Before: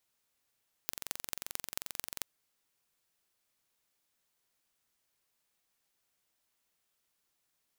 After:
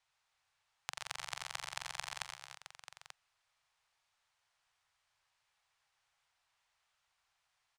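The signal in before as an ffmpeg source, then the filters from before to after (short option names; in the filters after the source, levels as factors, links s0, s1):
-f lavfi -i "aevalsrc='0.501*eq(mod(n,1951),0)*(0.5+0.5*eq(mod(n,9755),0))':d=1.37:s=44100"
-filter_complex "[0:a]firequalizer=gain_entry='entry(130,0);entry(190,-16);entry(290,-15);entry(790,6);entry(9300,-8);entry(15000,-30)':delay=0.05:min_phase=1,asplit=2[s0][s1];[s1]aecho=0:1:84|119|295|327|886:0.355|0.355|0.237|0.2|0.282[s2];[s0][s2]amix=inputs=2:normalize=0"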